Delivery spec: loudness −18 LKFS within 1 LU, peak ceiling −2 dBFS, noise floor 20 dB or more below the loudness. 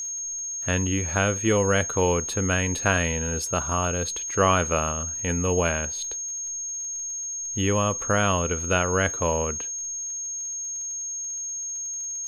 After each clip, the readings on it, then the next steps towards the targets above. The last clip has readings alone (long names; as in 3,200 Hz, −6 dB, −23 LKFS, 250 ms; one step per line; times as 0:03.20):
crackle rate 44 per second; interfering tone 6,500 Hz; level of the tone −29 dBFS; integrated loudness −25.0 LKFS; sample peak −6.0 dBFS; target loudness −18.0 LKFS
→ click removal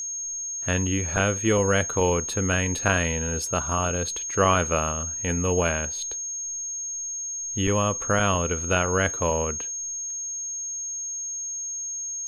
crackle rate 0.33 per second; interfering tone 6,500 Hz; level of the tone −29 dBFS
→ notch filter 6,500 Hz, Q 30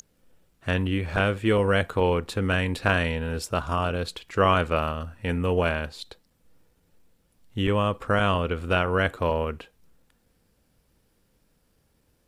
interfering tone none found; integrated loudness −25.5 LKFS; sample peak −5.5 dBFS; target loudness −18.0 LKFS
→ level +7.5 dB
brickwall limiter −2 dBFS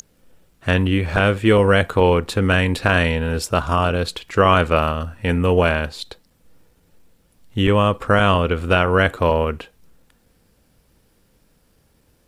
integrated loudness −18.0 LKFS; sample peak −2.0 dBFS; background noise floor −61 dBFS